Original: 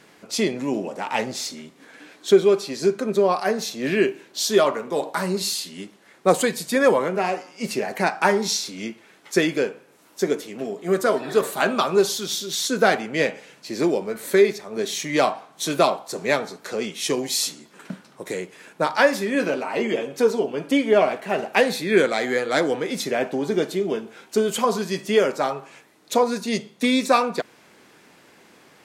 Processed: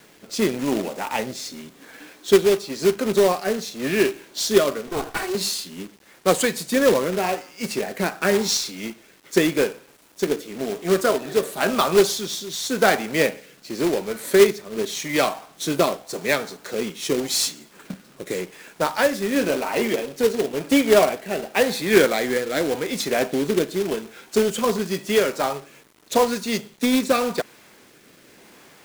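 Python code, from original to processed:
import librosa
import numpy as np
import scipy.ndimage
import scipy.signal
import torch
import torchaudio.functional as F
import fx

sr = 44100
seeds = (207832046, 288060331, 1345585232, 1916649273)

y = fx.lower_of_two(x, sr, delay_ms=2.7, at=(4.87, 5.35))
y = fx.rotary(y, sr, hz=0.9)
y = fx.quant_companded(y, sr, bits=4)
y = y * librosa.db_to_amplitude(2.0)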